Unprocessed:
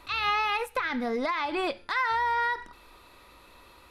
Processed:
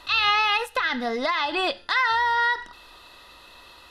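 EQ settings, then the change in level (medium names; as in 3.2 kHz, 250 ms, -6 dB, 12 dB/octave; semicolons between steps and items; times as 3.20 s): Butterworth band-stop 2.3 kHz, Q 5.8; peaking EQ 680 Hz +4.5 dB 0.41 oct; peaking EQ 3.5 kHz +10.5 dB 2.5 oct; 0.0 dB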